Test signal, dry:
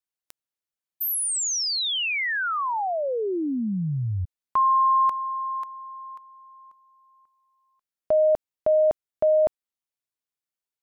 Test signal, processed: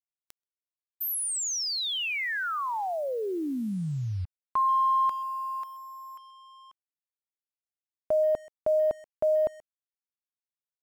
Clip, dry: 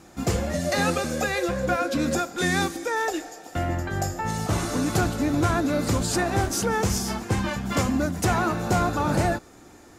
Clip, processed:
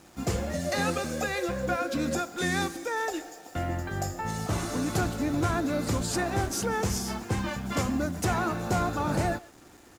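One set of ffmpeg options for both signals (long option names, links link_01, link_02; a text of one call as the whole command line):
ffmpeg -i in.wav -filter_complex "[0:a]asplit=2[link_01][link_02];[link_02]adelay=130,highpass=300,lowpass=3400,asoftclip=type=hard:threshold=-22.5dB,volume=-20dB[link_03];[link_01][link_03]amix=inputs=2:normalize=0,acrusher=bits=7:mix=0:aa=0.5,volume=-4.5dB" out.wav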